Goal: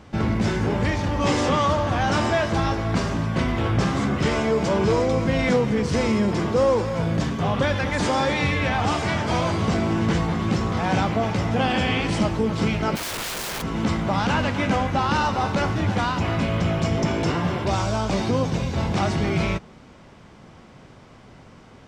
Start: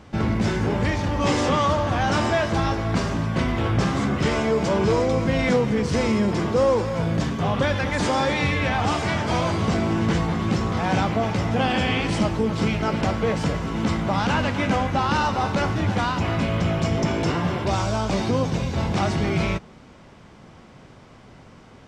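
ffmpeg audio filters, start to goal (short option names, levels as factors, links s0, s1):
-filter_complex "[0:a]asplit=3[s0][s1][s2];[s0]afade=t=out:st=12.95:d=0.02[s3];[s1]aeval=exprs='(mod(17.8*val(0)+1,2)-1)/17.8':c=same,afade=t=in:st=12.95:d=0.02,afade=t=out:st=13.61:d=0.02[s4];[s2]afade=t=in:st=13.61:d=0.02[s5];[s3][s4][s5]amix=inputs=3:normalize=0"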